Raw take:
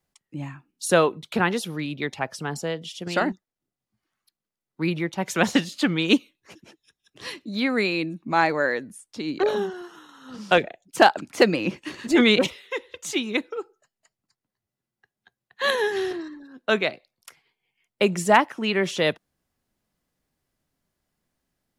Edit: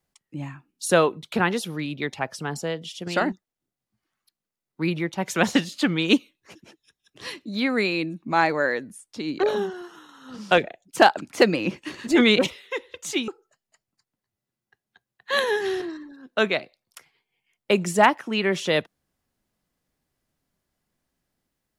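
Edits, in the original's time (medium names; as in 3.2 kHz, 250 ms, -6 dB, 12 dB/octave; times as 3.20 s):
13.28–13.59 s: delete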